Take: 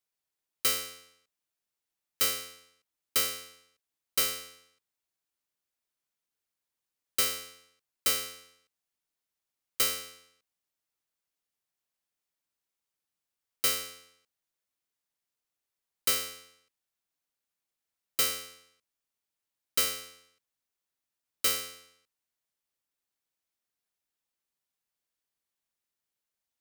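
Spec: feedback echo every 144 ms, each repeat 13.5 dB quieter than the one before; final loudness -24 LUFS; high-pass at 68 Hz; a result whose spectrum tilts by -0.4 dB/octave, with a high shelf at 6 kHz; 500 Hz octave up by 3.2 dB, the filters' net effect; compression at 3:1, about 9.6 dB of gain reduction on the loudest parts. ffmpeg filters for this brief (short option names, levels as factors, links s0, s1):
-af "highpass=68,equalizer=f=500:t=o:g=3.5,highshelf=f=6000:g=-5.5,acompressor=threshold=0.0126:ratio=3,aecho=1:1:144|288:0.211|0.0444,volume=7.5"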